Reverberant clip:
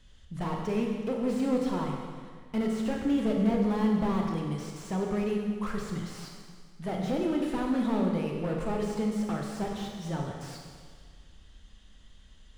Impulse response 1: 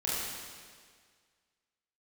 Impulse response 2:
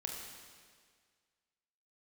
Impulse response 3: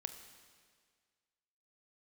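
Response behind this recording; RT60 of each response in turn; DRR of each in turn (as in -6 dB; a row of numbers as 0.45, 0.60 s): 2; 1.8, 1.8, 1.8 s; -8.0, 0.0, 8.0 dB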